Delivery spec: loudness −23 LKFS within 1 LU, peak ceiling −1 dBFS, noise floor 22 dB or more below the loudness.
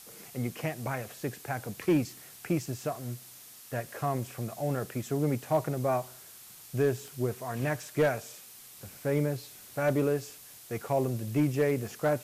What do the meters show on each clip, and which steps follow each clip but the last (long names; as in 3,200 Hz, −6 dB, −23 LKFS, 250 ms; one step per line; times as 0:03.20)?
share of clipped samples 0.3%; peaks flattened at −18.5 dBFS; background noise floor −51 dBFS; target noise floor −54 dBFS; integrated loudness −31.5 LKFS; sample peak −18.5 dBFS; target loudness −23.0 LKFS
→ clipped peaks rebuilt −18.5 dBFS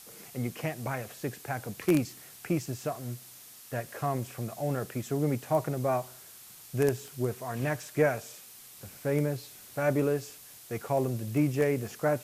share of clipped samples 0.0%; background noise floor −51 dBFS; target noise floor −54 dBFS
→ broadband denoise 6 dB, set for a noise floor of −51 dBFS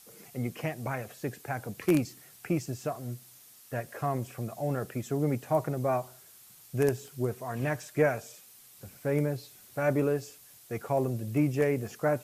background noise floor −55 dBFS; integrated loudness −31.5 LKFS; sample peak −10.0 dBFS; target loudness −23.0 LKFS
→ level +8.5 dB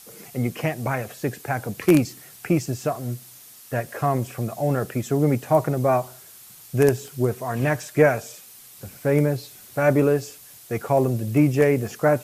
integrated loudness −23.0 LKFS; sample peak −1.5 dBFS; background noise floor −46 dBFS